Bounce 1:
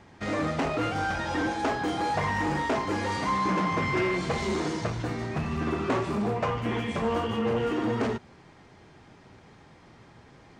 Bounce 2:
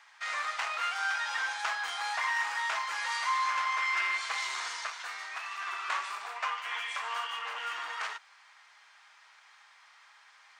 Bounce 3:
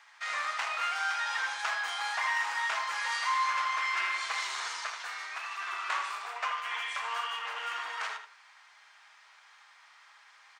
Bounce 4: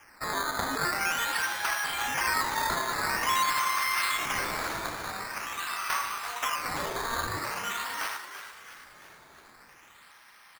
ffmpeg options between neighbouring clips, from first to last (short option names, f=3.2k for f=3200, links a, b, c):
-af "highpass=f=1.1k:w=0.5412,highpass=f=1.1k:w=1.3066,volume=2dB"
-filter_complex "[0:a]asplit=2[a][b];[b]adelay=80,lowpass=f=4k:p=1,volume=-7dB,asplit=2[c][d];[d]adelay=80,lowpass=f=4k:p=1,volume=0.24,asplit=2[e][f];[f]adelay=80,lowpass=f=4k:p=1,volume=0.24[g];[a][c][e][g]amix=inputs=4:normalize=0"
-filter_complex "[0:a]acrusher=samples=11:mix=1:aa=0.000001:lfo=1:lforange=11:lforate=0.46,asplit=7[a][b][c][d][e][f][g];[b]adelay=336,afreqshift=97,volume=-11dB[h];[c]adelay=672,afreqshift=194,volume=-16.4dB[i];[d]adelay=1008,afreqshift=291,volume=-21.7dB[j];[e]adelay=1344,afreqshift=388,volume=-27.1dB[k];[f]adelay=1680,afreqshift=485,volume=-32.4dB[l];[g]adelay=2016,afreqshift=582,volume=-37.8dB[m];[a][h][i][j][k][l][m]amix=inputs=7:normalize=0,volume=2.5dB"